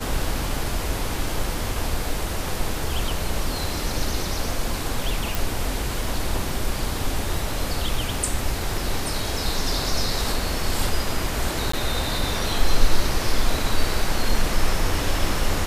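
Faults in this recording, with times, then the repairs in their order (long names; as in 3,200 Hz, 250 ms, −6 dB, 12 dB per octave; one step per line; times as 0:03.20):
0:05.35: click
0:11.72–0:11.73: drop-out 14 ms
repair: click removal
repair the gap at 0:11.72, 14 ms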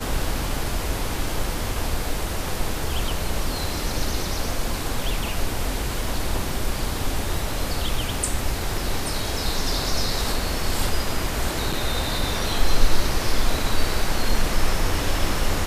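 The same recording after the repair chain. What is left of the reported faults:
none of them is left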